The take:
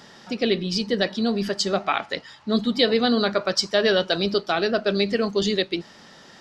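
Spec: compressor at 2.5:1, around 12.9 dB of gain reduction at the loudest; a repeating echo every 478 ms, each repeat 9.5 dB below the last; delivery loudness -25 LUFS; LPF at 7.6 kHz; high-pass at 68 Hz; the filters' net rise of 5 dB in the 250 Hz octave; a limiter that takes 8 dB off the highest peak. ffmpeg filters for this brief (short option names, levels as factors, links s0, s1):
-af "highpass=68,lowpass=7600,equalizer=f=250:t=o:g=6,acompressor=threshold=0.0224:ratio=2.5,alimiter=limit=0.0668:level=0:latency=1,aecho=1:1:478|956|1434|1912:0.335|0.111|0.0365|0.012,volume=2.82"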